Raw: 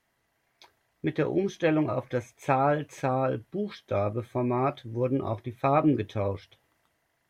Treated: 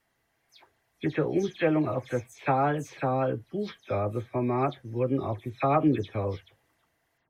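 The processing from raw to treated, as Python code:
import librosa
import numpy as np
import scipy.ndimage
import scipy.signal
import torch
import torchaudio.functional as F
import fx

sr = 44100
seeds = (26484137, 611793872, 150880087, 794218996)

y = fx.spec_delay(x, sr, highs='early', ms=122)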